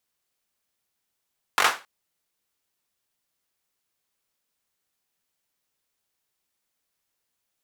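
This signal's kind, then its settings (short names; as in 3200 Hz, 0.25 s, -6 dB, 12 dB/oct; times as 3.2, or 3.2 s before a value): hand clap length 0.27 s, apart 21 ms, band 1200 Hz, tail 0.29 s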